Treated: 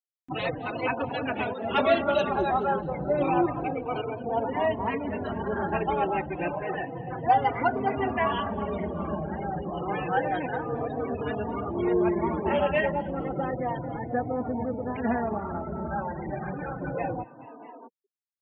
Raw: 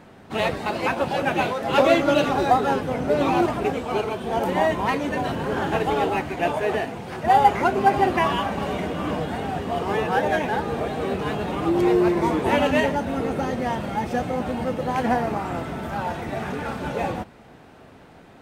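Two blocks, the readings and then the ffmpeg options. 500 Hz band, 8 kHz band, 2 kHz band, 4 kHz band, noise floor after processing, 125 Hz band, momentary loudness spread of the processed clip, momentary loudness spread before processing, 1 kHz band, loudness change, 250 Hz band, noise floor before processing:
-5.0 dB, under -25 dB, -6.0 dB, -8.5 dB, -49 dBFS, -4.5 dB, 9 LU, 10 LU, -5.5 dB, -5.5 dB, -5.5 dB, -47 dBFS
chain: -filter_complex "[0:a]afftfilt=real='re*gte(hypot(re,im),0.0447)':imag='im*gte(hypot(re,im),0.0447)':win_size=1024:overlap=0.75,asplit=2[a][b];[b]asplit=3[c][d][e];[c]adelay=215,afreqshift=56,volume=-21.5dB[f];[d]adelay=430,afreqshift=112,volume=-27.9dB[g];[e]adelay=645,afreqshift=168,volume=-34.3dB[h];[f][g][h]amix=inputs=3:normalize=0[i];[a][i]amix=inputs=2:normalize=0,acompressor=mode=upward:threshold=-22dB:ratio=2.5,asplit=2[j][k];[k]adelay=3.4,afreqshift=-0.3[l];[j][l]amix=inputs=2:normalize=1,volume=-2dB"

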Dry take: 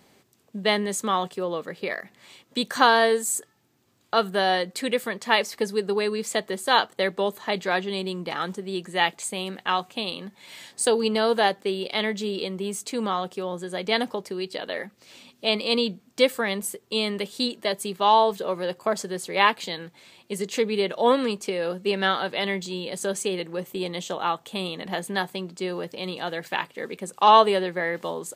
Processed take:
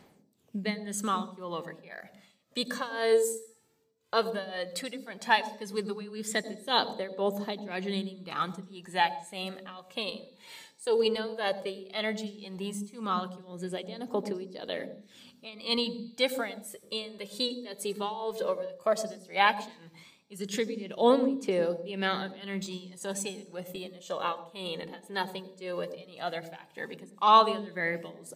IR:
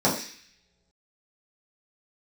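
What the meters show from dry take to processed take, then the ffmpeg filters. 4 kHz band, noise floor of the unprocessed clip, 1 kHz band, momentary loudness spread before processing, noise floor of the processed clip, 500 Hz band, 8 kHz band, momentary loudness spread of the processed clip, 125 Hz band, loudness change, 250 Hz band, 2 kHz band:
-7.0 dB, -62 dBFS, -6.5 dB, 11 LU, -62 dBFS, -6.0 dB, -8.5 dB, 15 LU, -5.5 dB, -6.0 dB, -5.5 dB, -7.5 dB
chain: -filter_complex "[0:a]tremolo=f=1.9:d=0.91,aphaser=in_gain=1:out_gain=1:delay=2.3:decay=0.51:speed=0.14:type=triangular,asplit=2[a][b];[b]equalizer=f=1.4k:w=0.64:g=-11.5[c];[1:a]atrim=start_sample=2205,adelay=87[d];[c][d]afir=irnorm=-1:irlink=0,volume=-25dB[e];[a][e]amix=inputs=2:normalize=0,volume=-4.5dB"

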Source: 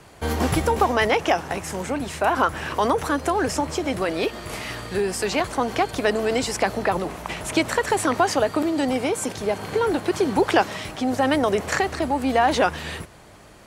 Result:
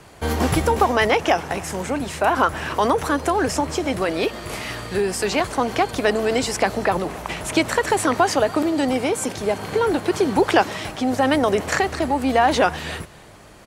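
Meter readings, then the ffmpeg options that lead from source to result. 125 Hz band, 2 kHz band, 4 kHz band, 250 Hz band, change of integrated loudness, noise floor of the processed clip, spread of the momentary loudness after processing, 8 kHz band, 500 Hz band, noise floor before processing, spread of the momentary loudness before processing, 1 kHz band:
+2.0 dB, +2.0 dB, +2.0 dB, +2.0 dB, +2.0 dB, -45 dBFS, 8 LU, +2.0 dB, +2.0 dB, -47 dBFS, 8 LU, +2.0 dB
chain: -af "aecho=1:1:283:0.0794,volume=2dB"

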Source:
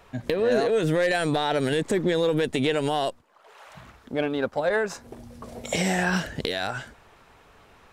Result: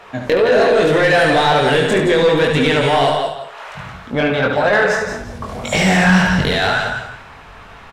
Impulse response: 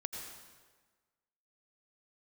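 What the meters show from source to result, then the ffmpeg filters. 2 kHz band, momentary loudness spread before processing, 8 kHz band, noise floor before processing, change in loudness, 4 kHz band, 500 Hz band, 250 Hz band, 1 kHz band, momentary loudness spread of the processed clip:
+13.5 dB, 11 LU, +7.0 dB, -56 dBFS, +10.5 dB, +11.5 dB, +10.0 dB, +9.5 dB, +13.0 dB, 15 LU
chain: -filter_complex "[0:a]asubboost=boost=7:cutoff=140,aecho=1:1:171|342|513:0.355|0.0745|0.0156,flanger=delay=19.5:depth=4.2:speed=1.9,asplit=2[a][b];[1:a]atrim=start_sample=2205,atrim=end_sample=6615,adelay=72[c];[b][c]afir=irnorm=-1:irlink=0,volume=-4dB[d];[a][d]amix=inputs=2:normalize=0,asplit=2[e][f];[f]highpass=f=720:p=1,volume=21dB,asoftclip=type=tanh:threshold=-8dB[g];[e][g]amix=inputs=2:normalize=0,lowpass=f=2.2k:p=1,volume=-6dB,volume=5.5dB"

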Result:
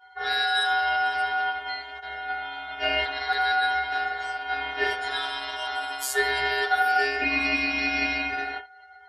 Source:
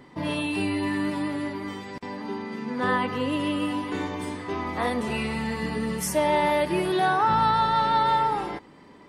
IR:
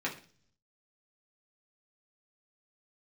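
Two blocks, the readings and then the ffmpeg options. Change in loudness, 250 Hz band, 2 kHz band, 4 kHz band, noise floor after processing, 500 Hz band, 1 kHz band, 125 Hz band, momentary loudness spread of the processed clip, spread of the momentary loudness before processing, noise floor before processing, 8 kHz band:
+0.5 dB, -11.5 dB, +8.5 dB, +6.5 dB, -50 dBFS, -6.0 dB, -2.0 dB, under -15 dB, 10 LU, 12 LU, -50 dBFS, -0.5 dB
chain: -filter_complex "[1:a]atrim=start_sample=2205,atrim=end_sample=6174,asetrate=74970,aresample=44100[a];[0:a][a]afir=irnorm=-1:irlink=0,afftfilt=real='hypot(re,im)*cos(PI*b)':imag='0':win_size=512:overlap=0.75,afftdn=nr=20:nf=-48,aeval=exprs='val(0)*sin(2*PI*1100*n/s)':c=same,bass=f=250:g=-13,treble=f=4k:g=5,volume=7dB"

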